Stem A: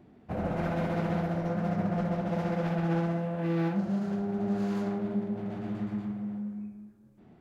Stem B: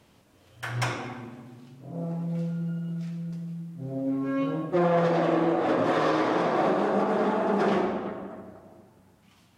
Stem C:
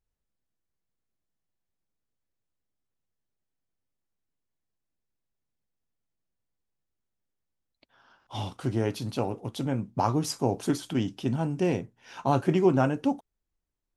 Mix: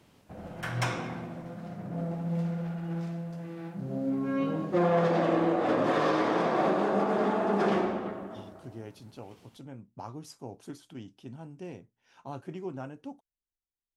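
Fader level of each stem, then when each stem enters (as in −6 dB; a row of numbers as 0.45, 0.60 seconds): −11.5, −2.0, −16.0 decibels; 0.00, 0.00, 0.00 seconds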